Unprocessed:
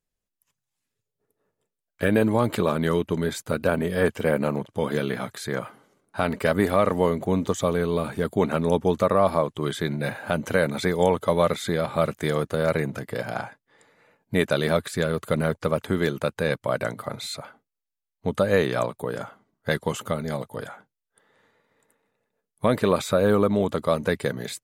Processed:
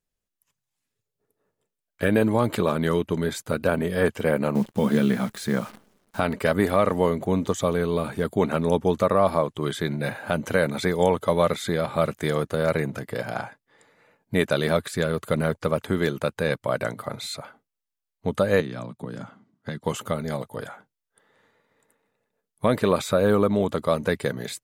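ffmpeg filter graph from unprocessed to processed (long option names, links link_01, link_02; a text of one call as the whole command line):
ffmpeg -i in.wav -filter_complex "[0:a]asettb=1/sr,asplit=3[link_01][link_02][link_03];[link_01]atrim=end=4.554[link_04];[link_02]atrim=start=4.55:end=6.2,asetpts=PTS-STARTPTS,afade=type=in:duration=0.004:curve=qsin,afade=type=out:start_time=1.646:duration=0.004:curve=qsin,equalizer=frequency=210:width_type=o:width=0.5:gain=12,acrusher=bits=8:dc=4:mix=0:aa=0.000001[link_05];[link_03]atrim=start=6.196[link_06];[link_04][link_05]acrossfade=duration=0.004:curve1=hsin:curve2=qsin[link_07];[link_07][link_06]acrossfade=duration=0.004:curve1=qsin:curve2=hsin,asettb=1/sr,asplit=3[link_08][link_09][link_10];[link_08]atrim=end=18.604[link_11];[link_09]atrim=start=18.6:end=19.84,asetpts=PTS-STARTPTS,afade=type=in:duration=0.004:curve=qsin,afade=type=out:start_time=1.236:duration=0.004:curve=qsin,lowshelf=frequency=330:width_type=q:width=1.5:gain=7.5,acrossover=split=240|3900[link_12][link_13][link_14];[link_12]acompressor=threshold=-34dB:ratio=4[link_15];[link_13]acompressor=threshold=-36dB:ratio=4[link_16];[link_14]acompressor=threshold=-51dB:ratio=4[link_17];[link_15][link_16][link_17]amix=inputs=3:normalize=0,highpass=120,lowpass=6900[link_18];[link_10]atrim=start=19.836[link_19];[link_11][link_18]acrossfade=duration=0.004:curve1=hsin:curve2=qsin[link_20];[link_20][link_19]acrossfade=duration=0.004:curve1=qsin:curve2=hsin" out.wav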